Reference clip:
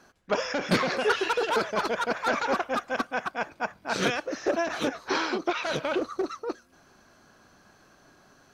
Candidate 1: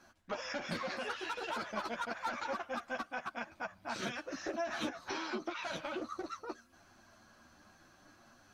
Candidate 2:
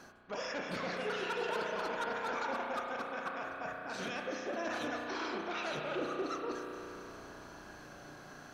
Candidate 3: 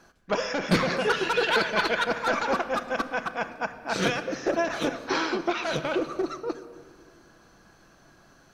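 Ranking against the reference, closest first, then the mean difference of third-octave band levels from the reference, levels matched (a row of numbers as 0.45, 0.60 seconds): 3, 1, 2; 2.5, 4.0, 8.0 decibels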